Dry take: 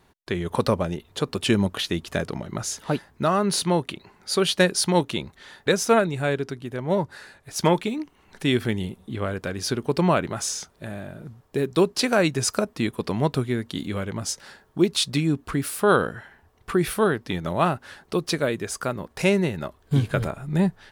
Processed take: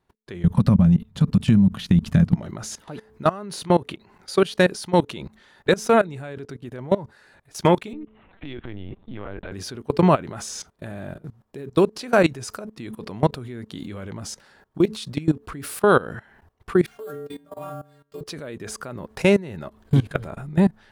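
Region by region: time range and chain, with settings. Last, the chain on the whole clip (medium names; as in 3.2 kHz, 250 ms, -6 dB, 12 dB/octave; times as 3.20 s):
0.44–2.36 s: resonant low shelf 270 Hz +12 dB, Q 3 + compression 4:1, threshold -14 dBFS
7.93–9.52 s: LPC vocoder at 8 kHz pitch kept + compression 4:1, threshold -28 dBFS
16.86–18.21 s: dynamic bell 440 Hz, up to +6 dB, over -32 dBFS, Q 0.76 + inharmonic resonator 140 Hz, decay 0.67 s, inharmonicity 0.008 + sample-rate reducer 12 kHz
whole clip: treble shelf 2.4 kHz -5 dB; de-hum 217 Hz, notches 2; level held to a coarse grid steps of 20 dB; trim +6 dB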